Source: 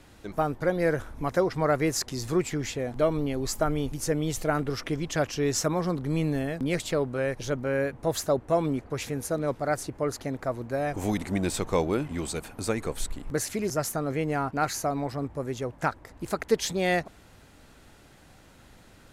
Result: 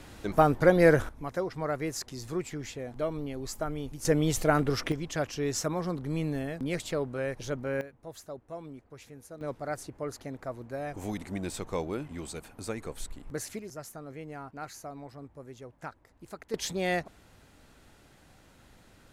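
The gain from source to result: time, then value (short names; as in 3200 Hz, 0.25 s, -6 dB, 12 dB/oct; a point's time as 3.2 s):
+5 dB
from 1.09 s -7.5 dB
from 4.05 s +2 dB
from 4.92 s -4.5 dB
from 7.81 s -17 dB
from 9.41 s -7.5 dB
from 13.59 s -14 dB
from 16.54 s -4 dB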